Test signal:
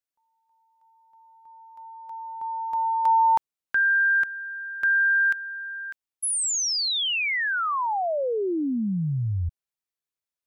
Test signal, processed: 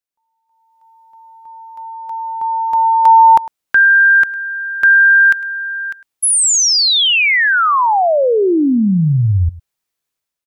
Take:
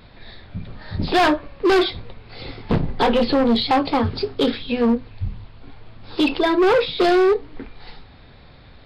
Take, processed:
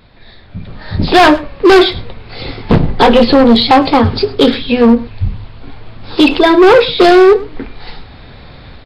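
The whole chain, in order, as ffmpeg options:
-af "aecho=1:1:104:0.112,dynaudnorm=f=460:g=3:m=3.98,volume=1.12"

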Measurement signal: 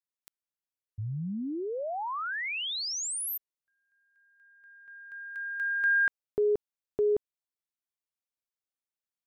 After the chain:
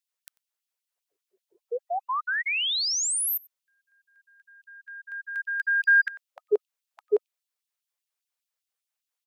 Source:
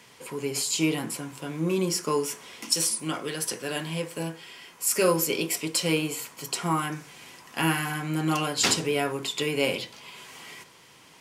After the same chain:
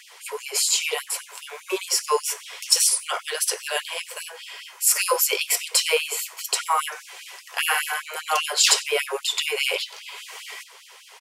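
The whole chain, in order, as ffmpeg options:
-filter_complex "[0:a]acontrast=38,equalizer=f=160:t=o:w=0.32:g=6.5,asplit=2[s0][s1];[s1]adelay=93.29,volume=0.0708,highshelf=f=4000:g=-2.1[s2];[s0][s2]amix=inputs=2:normalize=0,afftfilt=real='re*gte(b*sr/1024,350*pow(2600/350,0.5+0.5*sin(2*PI*5*pts/sr)))':imag='im*gte(b*sr/1024,350*pow(2600/350,0.5+0.5*sin(2*PI*5*pts/sr)))':win_size=1024:overlap=0.75,volume=1.19"

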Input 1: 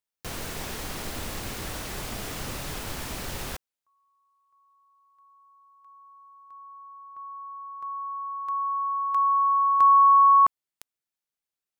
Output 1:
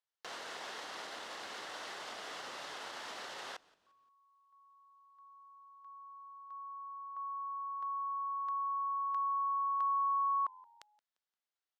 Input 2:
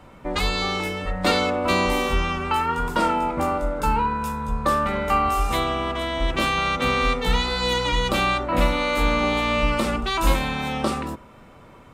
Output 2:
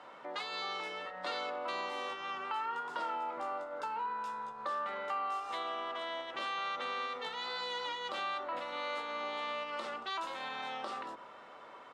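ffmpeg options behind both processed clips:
-filter_complex "[0:a]equalizer=f=2400:t=o:w=0.24:g=-7.5,acompressor=threshold=0.0141:ratio=3:attack=5.6:release=60,highpass=610,lowpass=4400,asplit=2[s0][s1];[s1]asplit=3[s2][s3][s4];[s2]adelay=174,afreqshift=-90,volume=0.0631[s5];[s3]adelay=348,afreqshift=-180,volume=0.0251[s6];[s4]adelay=522,afreqshift=-270,volume=0.0101[s7];[s5][s6][s7]amix=inputs=3:normalize=0[s8];[s0][s8]amix=inputs=2:normalize=0"

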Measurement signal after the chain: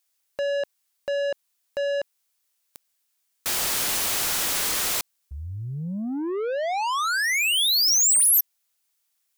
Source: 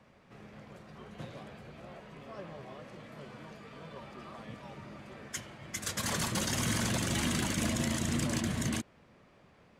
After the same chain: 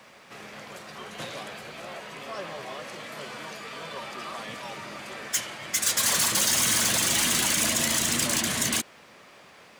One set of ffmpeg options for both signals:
-filter_complex "[0:a]asplit=2[s0][s1];[s1]highpass=f=720:p=1,volume=11.2,asoftclip=type=tanh:threshold=0.119[s2];[s0][s2]amix=inputs=2:normalize=0,lowpass=f=6600:p=1,volume=0.501,crystalizer=i=2.5:c=0,volume=0.75"

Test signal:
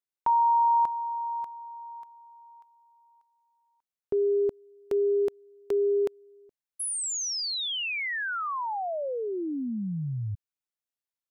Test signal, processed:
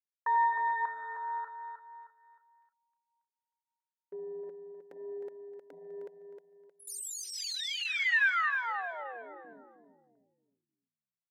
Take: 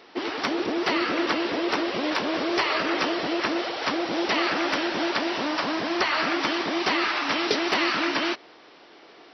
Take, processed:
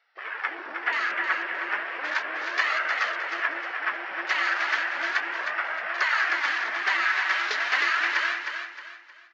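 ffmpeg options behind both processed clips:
-filter_complex "[0:a]highpass=760,afwtdn=0.0251,equalizer=f=1700:w=1.7:g=13.5,flanger=delay=1.4:depth=4:regen=-21:speed=0.35:shape=sinusoidal,asplit=2[s0][s1];[s1]aecho=0:1:311|622|933|1244:0.473|0.166|0.058|0.0203[s2];[s0][s2]amix=inputs=2:normalize=0,volume=0.668"

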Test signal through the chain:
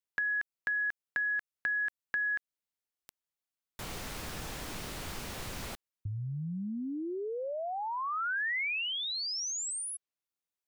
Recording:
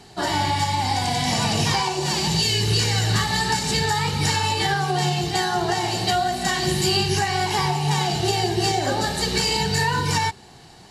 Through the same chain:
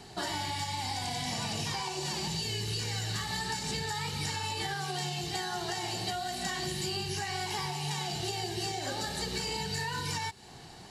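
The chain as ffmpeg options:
-filter_complex "[0:a]acrossover=split=1900|7300[s0][s1][s2];[s0]acompressor=threshold=0.02:ratio=4[s3];[s1]acompressor=threshold=0.0158:ratio=4[s4];[s2]acompressor=threshold=0.00562:ratio=4[s5];[s3][s4][s5]amix=inputs=3:normalize=0,volume=0.75"

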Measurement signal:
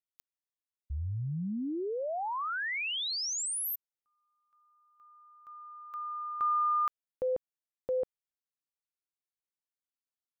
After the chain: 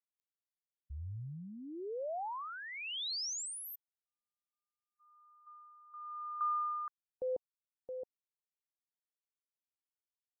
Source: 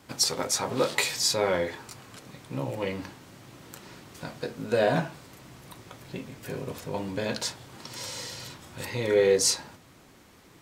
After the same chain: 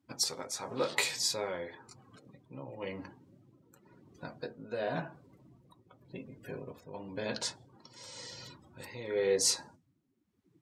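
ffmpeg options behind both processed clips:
-af "afftdn=nr=25:nf=-44,lowshelf=f=170:g=-5,tremolo=f=0.94:d=0.59,volume=0.631"

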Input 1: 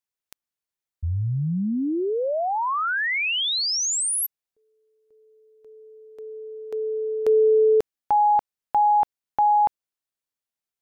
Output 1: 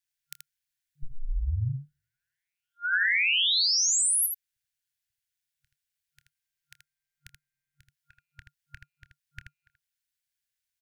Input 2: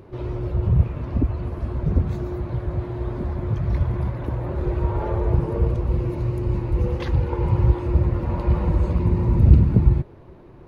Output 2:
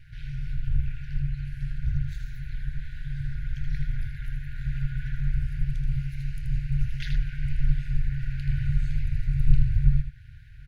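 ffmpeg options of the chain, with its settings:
-filter_complex "[0:a]aeval=exprs='val(0)*sin(2*PI*90*n/s)':c=same,asplit=2[s0][s1];[s1]acompressor=threshold=0.0126:ratio=6:attack=11:release=242:detection=peak,volume=1[s2];[s0][s2]amix=inputs=2:normalize=0,aecho=1:1:27|80:0.168|0.501,afftfilt=real='re*(1-between(b*sr/4096,140,1400))':imag='im*(1-between(b*sr/4096,140,1400))':win_size=4096:overlap=0.75"

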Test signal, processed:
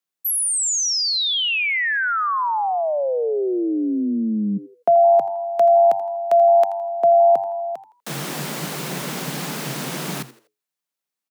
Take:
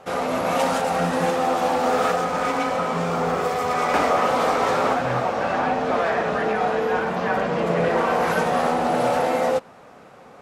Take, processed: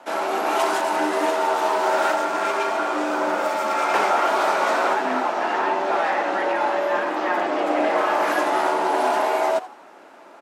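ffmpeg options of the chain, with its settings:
-filter_complex "[0:a]asplit=4[s0][s1][s2][s3];[s1]adelay=82,afreqshift=97,volume=0.15[s4];[s2]adelay=164,afreqshift=194,volume=0.0479[s5];[s3]adelay=246,afreqshift=291,volume=0.0153[s6];[s0][s4][s5][s6]amix=inputs=4:normalize=0,afreqshift=130"

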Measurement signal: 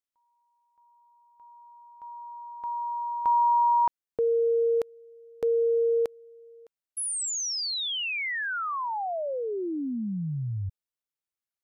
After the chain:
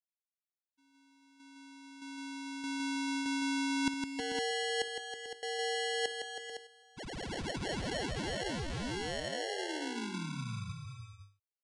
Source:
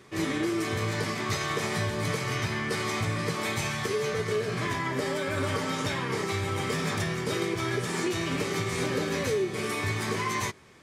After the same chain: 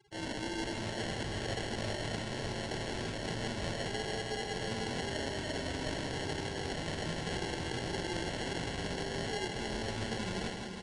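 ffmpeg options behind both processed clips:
-filter_complex "[0:a]bandreject=f=50:t=h:w=6,bandreject=f=100:t=h:w=6,bandreject=f=150:t=h:w=6,bandreject=f=200:t=h:w=6,bandreject=f=250:t=h:w=6,bandreject=f=300:t=h:w=6,bandreject=f=350:t=h:w=6,bandreject=f=400:t=h:w=6,afftfilt=real='re*gte(hypot(re,im),0.00891)':imag='im*gte(hypot(re,im),0.00891)':win_size=1024:overlap=0.75,acrossover=split=6900[s0][s1];[s1]acompressor=threshold=0.00178:ratio=4:attack=1:release=60[s2];[s0][s2]amix=inputs=2:normalize=0,highshelf=f=2100:g=7.5,areverse,acompressor=threshold=0.0251:ratio=20:attack=94:release=136:knee=6:detection=peak,areverse,acrusher=samples=36:mix=1:aa=0.000001,acrossover=split=520|5000[s3][s4][s5];[s4]crystalizer=i=4.5:c=0[s6];[s3][s6][s5]amix=inputs=3:normalize=0,aecho=1:1:58|160|321|440|510:0.106|0.531|0.376|0.266|0.355,aresample=22050,aresample=44100,volume=0.398"

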